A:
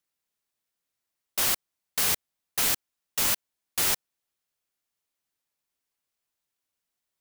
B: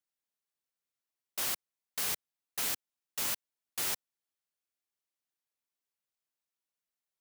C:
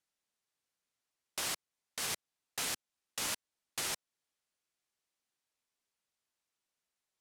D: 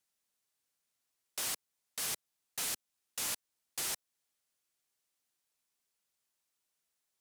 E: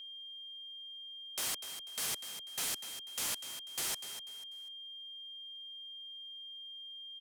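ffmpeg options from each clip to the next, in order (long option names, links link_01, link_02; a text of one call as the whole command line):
ffmpeg -i in.wav -af "lowshelf=frequency=68:gain=-11,volume=-8.5dB" out.wav
ffmpeg -i in.wav -af "alimiter=level_in=2.5dB:limit=-24dB:level=0:latency=1:release=272,volume=-2.5dB,lowpass=10000,volume=5dB" out.wav
ffmpeg -i in.wav -filter_complex "[0:a]acrossover=split=750[link_01][link_02];[link_02]crystalizer=i=1:c=0[link_03];[link_01][link_03]amix=inputs=2:normalize=0,asoftclip=type=tanh:threshold=-31.5dB" out.wav
ffmpeg -i in.wav -filter_complex "[0:a]asplit=4[link_01][link_02][link_03][link_04];[link_02]adelay=246,afreqshift=44,volume=-10.5dB[link_05];[link_03]adelay=492,afreqshift=88,volume=-20.7dB[link_06];[link_04]adelay=738,afreqshift=132,volume=-30.8dB[link_07];[link_01][link_05][link_06][link_07]amix=inputs=4:normalize=0,aeval=exprs='val(0)+0.00562*sin(2*PI*3200*n/s)':channel_layout=same" out.wav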